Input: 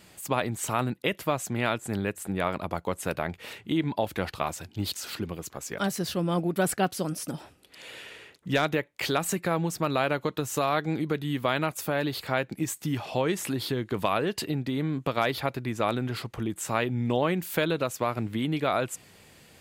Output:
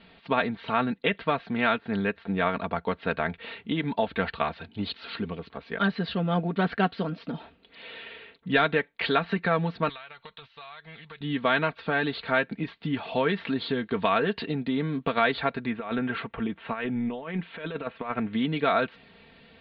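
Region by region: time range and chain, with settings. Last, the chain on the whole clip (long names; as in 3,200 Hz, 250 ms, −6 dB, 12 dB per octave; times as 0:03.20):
0:09.89–0:11.21: guitar amp tone stack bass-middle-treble 10-0-10 + downward compressor 12 to 1, threshold −40 dBFS + highs frequency-modulated by the lows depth 0.24 ms
0:15.70–0:18.33: low-pass filter 3,100 Hz 24 dB per octave + low-shelf EQ 400 Hz −3.5 dB + compressor whose output falls as the input rises −31 dBFS, ratio −0.5
whole clip: Butterworth low-pass 4,200 Hz 72 dB per octave; dynamic equaliser 1,600 Hz, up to +6 dB, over −47 dBFS, Q 2.8; comb filter 4.4 ms, depth 64%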